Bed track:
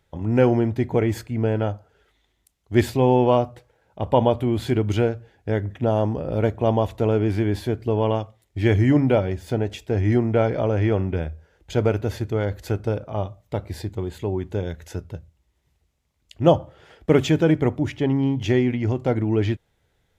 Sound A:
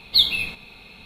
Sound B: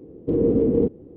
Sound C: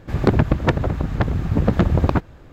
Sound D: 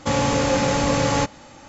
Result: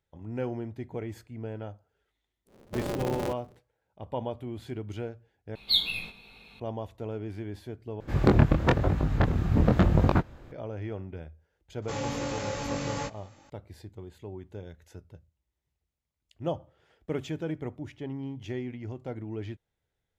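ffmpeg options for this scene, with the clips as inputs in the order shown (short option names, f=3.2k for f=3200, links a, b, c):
-filter_complex "[0:a]volume=-15.5dB[a];[2:a]aeval=exprs='val(0)*sgn(sin(2*PI*110*n/s))':c=same[b];[1:a]flanger=delay=18.5:depth=2.2:speed=2.3[c];[3:a]flanger=delay=19.5:depth=7.3:speed=1[d];[4:a]flanger=delay=19:depth=2.6:speed=1.5[e];[a]asplit=3[f][g][h];[f]atrim=end=5.554[i];[c]atrim=end=1.05,asetpts=PTS-STARTPTS,volume=-4.5dB[j];[g]atrim=start=6.596:end=8.004[k];[d]atrim=end=2.52,asetpts=PTS-STARTPTS,volume=-1dB[l];[h]atrim=start=10.516[m];[b]atrim=end=1.16,asetpts=PTS-STARTPTS,volume=-13.5dB,afade=t=in:d=0.1,afade=t=out:st=1.06:d=0.1,adelay=2450[n];[e]atrim=end=1.68,asetpts=PTS-STARTPTS,volume=-10dB,afade=t=in:d=0.004:c=hsin,afade=t=out:st=1.676:d=0.004:c=hsin,adelay=11820[o];[i][j]acrossfade=d=0.004:c1=hsin:c2=hsin[p];[p][k]acrossfade=d=0.004:c1=hsin:c2=hsin[q];[q][l]acrossfade=d=0.004:c1=hsin:c2=hsin[r];[r][m]acrossfade=d=0.004:c1=hsin:c2=hsin[s];[s][n][o]amix=inputs=3:normalize=0"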